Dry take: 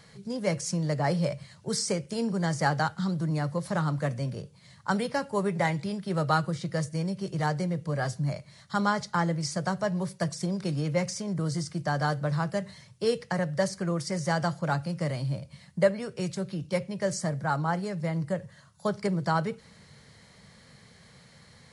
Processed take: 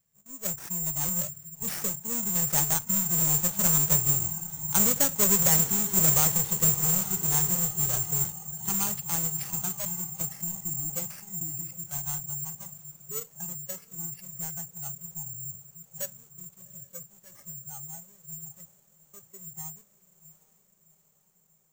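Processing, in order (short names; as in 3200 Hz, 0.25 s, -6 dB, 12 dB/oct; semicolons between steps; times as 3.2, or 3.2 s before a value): half-waves squared off; Doppler pass-by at 5.17, 12 m/s, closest 18 m; gate -54 dBFS, range -6 dB; low shelf 110 Hz +9.5 dB; diffused feedback echo 0.76 s, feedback 65%, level -11.5 dB; spectral noise reduction 12 dB; careless resampling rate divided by 6×, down none, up zero stuff; maximiser -2.5 dB; gain -4.5 dB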